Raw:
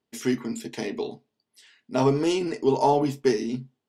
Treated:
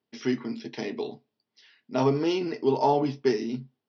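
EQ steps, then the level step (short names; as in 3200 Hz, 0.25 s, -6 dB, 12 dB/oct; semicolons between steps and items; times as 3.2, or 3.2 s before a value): HPF 81 Hz; steep low-pass 5800 Hz 96 dB/oct; -2.0 dB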